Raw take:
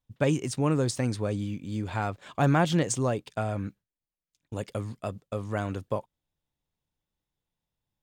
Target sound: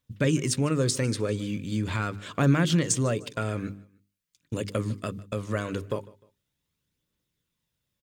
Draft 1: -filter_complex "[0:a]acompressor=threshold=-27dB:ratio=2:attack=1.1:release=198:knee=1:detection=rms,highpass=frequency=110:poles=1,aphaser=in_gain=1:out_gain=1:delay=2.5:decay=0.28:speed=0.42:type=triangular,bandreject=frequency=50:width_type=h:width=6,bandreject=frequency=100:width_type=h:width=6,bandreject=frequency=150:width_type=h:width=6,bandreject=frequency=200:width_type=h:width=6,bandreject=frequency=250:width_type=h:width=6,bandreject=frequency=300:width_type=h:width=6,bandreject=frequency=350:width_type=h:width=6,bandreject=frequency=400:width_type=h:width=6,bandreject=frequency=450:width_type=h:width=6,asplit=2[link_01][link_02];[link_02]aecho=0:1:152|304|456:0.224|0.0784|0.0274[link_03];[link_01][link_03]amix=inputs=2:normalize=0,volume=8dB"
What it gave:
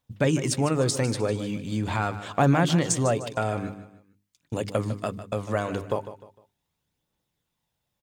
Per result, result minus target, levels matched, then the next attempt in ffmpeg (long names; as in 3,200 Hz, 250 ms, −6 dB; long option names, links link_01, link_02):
echo-to-direct +9 dB; 1,000 Hz band +5.5 dB
-filter_complex "[0:a]acompressor=threshold=-27dB:ratio=2:attack=1.1:release=198:knee=1:detection=rms,highpass=frequency=110:poles=1,aphaser=in_gain=1:out_gain=1:delay=2.5:decay=0.28:speed=0.42:type=triangular,bandreject=frequency=50:width_type=h:width=6,bandreject=frequency=100:width_type=h:width=6,bandreject=frequency=150:width_type=h:width=6,bandreject=frequency=200:width_type=h:width=6,bandreject=frequency=250:width_type=h:width=6,bandreject=frequency=300:width_type=h:width=6,bandreject=frequency=350:width_type=h:width=6,bandreject=frequency=400:width_type=h:width=6,bandreject=frequency=450:width_type=h:width=6,asplit=2[link_01][link_02];[link_02]aecho=0:1:152|304:0.0794|0.0278[link_03];[link_01][link_03]amix=inputs=2:normalize=0,volume=8dB"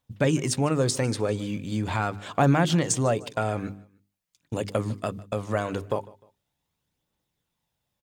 1,000 Hz band +5.5 dB
-filter_complex "[0:a]acompressor=threshold=-27dB:ratio=2:attack=1.1:release=198:knee=1:detection=rms,highpass=frequency=110:poles=1,equalizer=frequency=780:width_type=o:width=0.56:gain=-14.5,aphaser=in_gain=1:out_gain=1:delay=2.5:decay=0.28:speed=0.42:type=triangular,bandreject=frequency=50:width_type=h:width=6,bandreject=frequency=100:width_type=h:width=6,bandreject=frequency=150:width_type=h:width=6,bandreject=frequency=200:width_type=h:width=6,bandreject=frequency=250:width_type=h:width=6,bandreject=frequency=300:width_type=h:width=6,bandreject=frequency=350:width_type=h:width=6,bandreject=frequency=400:width_type=h:width=6,bandreject=frequency=450:width_type=h:width=6,asplit=2[link_01][link_02];[link_02]aecho=0:1:152|304:0.0794|0.0278[link_03];[link_01][link_03]amix=inputs=2:normalize=0,volume=8dB"